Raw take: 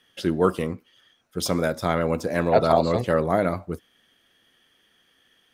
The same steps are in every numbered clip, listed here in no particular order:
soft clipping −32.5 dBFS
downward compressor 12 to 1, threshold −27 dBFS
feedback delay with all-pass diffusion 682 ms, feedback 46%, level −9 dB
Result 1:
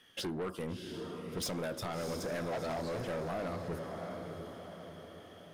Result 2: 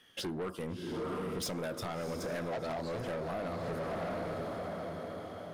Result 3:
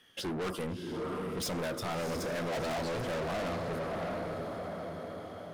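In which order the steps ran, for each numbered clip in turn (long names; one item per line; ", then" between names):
downward compressor, then feedback delay with all-pass diffusion, then soft clipping
feedback delay with all-pass diffusion, then downward compressor, then soft clipping
feedback delay with all-pass diffusion, then soft clipping, then downward compressor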